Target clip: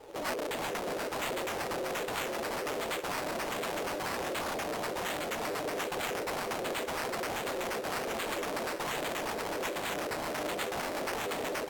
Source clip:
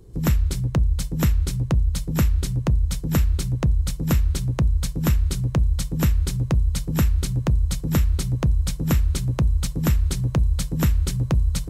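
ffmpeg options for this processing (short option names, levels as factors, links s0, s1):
-filter_complex "[0:a]acrossover=split=310[s0][s1];[s1]acontrast=36[s2];[s0][s2]amix=inputs=2:normalize=0,flanger=delay=4.5:depth=7:regen=-23:speed=1.9:shape=triangular,acrusher=bits=2:mode=log:mix=0:aa=0.000001,asettb=1/sr,asplit=3[s3][s4][s5];[s3]atrim=end=3.894[s6];[s4]atrim=start=3.89:end=4.66,asetpts=PTS-STARTPTS,afade=t=in:d=0.004:c=qsin,afade=t=out:st=0.766:d=0.004:c=qsin,equalizer=f=160:t=o:w=0.66:g=14.5[s7];[s5]atrim=start=4.656[s8];[s6][s7]acrossfade=d=0.004:c1=hsin:c2=qsin[s9];[s9][s8]acrossfade=d=0.004:c1=qsin:c2=hsin,asplit=2[s10][s11];[s11]acompressor=threshold=0.0891:ratio=6,volume=0.75[s12];[s10][s12]amix=inputs=2:normalize=0,asoftclip=type=tanh:threshold=0.376,aecho=1:1:375|750|1125|1500|1875:0.473|0.208|0.0916|0.0403|0.0177,acrusher=samples=11:mix=1:aa=0.000001:lfo=1:lforange=6.6:lforate=1.3,aeval=exprs='0.0596*(abs(mod(val(0)/0.0596+3,4)-2)-1)':c=same,aeval=exprs='val(0)*sin(2*PI*450*n/s)':c=same,lowshelf=f=270:g=-12"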